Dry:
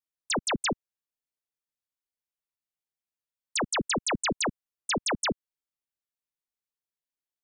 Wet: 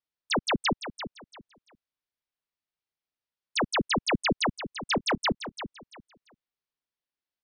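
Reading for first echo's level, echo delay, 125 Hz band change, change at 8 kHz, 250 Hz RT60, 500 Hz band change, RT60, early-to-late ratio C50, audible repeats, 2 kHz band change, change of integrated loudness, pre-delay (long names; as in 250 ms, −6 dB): −11.0 dB, 341 ms, +3.0 dB, −8.5 dB, no reverb audible, +1.5 dB, no reverb audible, no reverb audible, 2, +2.0 dB, +0.5 dB, no reverb audible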